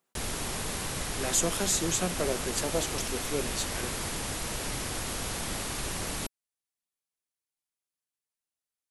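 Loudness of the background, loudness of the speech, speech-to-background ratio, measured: -33.0 LUFS, -30.5 LUFS, 2.5 dB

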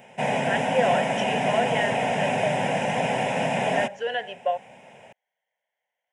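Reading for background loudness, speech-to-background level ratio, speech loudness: -25.0 LUFS, -3.5 dB, -28.5 LUFS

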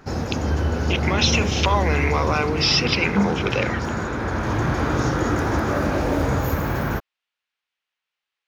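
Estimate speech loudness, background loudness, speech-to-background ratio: -22.0 LUFS, -23.5 LUFS, 1.5 dB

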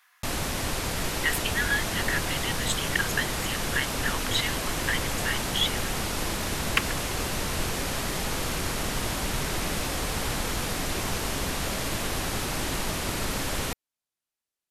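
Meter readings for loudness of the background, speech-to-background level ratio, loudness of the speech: -29.0 LUFS, -1.0 dB, -30.0 LUFS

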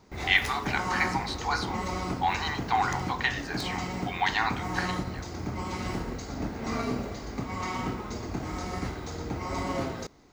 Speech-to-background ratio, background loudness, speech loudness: 4.5 dB, -34.0 LUFS, -29.5 LUFS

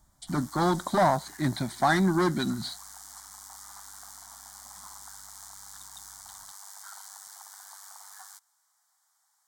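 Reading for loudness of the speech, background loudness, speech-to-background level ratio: -27.0 LUFS, -45.0 LUFS, 18.0 dB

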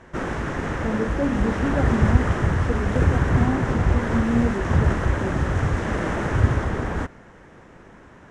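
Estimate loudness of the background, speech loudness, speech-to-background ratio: -23.5 LUFS, -28.0 LUFS, -4.5 dB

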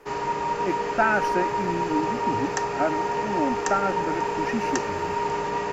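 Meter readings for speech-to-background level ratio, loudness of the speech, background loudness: -2.5 dB, -29.0 LUFS, -26.5 LUFS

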